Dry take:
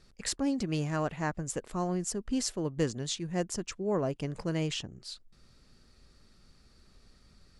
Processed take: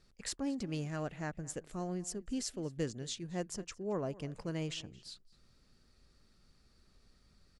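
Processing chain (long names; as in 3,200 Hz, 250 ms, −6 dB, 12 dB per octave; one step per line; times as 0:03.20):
0:00.81–0:03.26: parametric band 1,000 Hz −6.5 dB 0.53 octaves
slap from a distant wall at 38 metres, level −20 dB
level −6.5 dB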